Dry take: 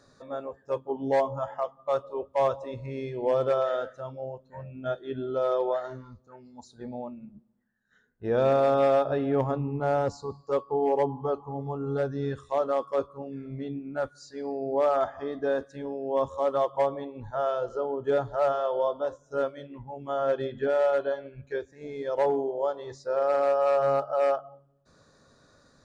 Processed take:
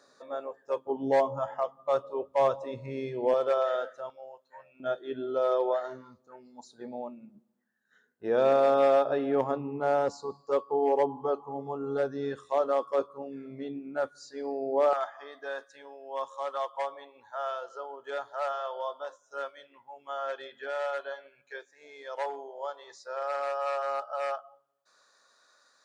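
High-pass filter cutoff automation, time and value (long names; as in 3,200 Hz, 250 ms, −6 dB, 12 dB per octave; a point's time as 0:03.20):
380 Hz
from 0:00.87 150 Hz
from 0:03.34 430 Hz
from 0:04.10 940 Hz
from 0:04.80 270 Hz
from 0:14.93 970 Hz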